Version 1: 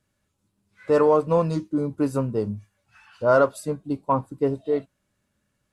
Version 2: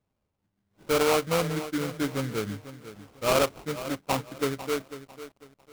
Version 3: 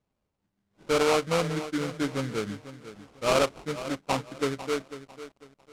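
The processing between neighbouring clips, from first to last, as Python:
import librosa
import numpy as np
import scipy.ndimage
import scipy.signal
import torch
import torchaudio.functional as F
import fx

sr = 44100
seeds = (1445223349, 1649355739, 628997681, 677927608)

y1 = fx.sample_hold(x, sr, seeds[0], rate_hz=1800.0, jitter_pct=20)
y1 = fx.echo_crushed(y1, sr, ms=497, feedback_pct=35, bits=7, wet_db=-13.0)
y1 = y1 * 10.0 ** (-5.5 / 20.0)
y2 = scipy.signal.sosfilt(scipy.signal.butter(2, 8600.0, 'lowpass', fs=sr, output='sos'), y1)
y2 = fx.peak_eq(y2, sr, hz=98.0, db=-5.5, octaves=0.45)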